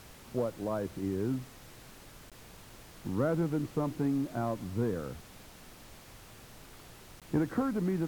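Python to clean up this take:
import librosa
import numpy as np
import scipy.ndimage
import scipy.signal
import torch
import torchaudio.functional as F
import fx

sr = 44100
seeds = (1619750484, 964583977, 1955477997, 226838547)

y = fx.fix_interpolate(x, sr, at_s=(2.3, 7.2), length_ms=17.0)
y = fx.noise_reduce(y, sr, print_start_s=5.99, print_end_s=6.49, reduce_db=26.0)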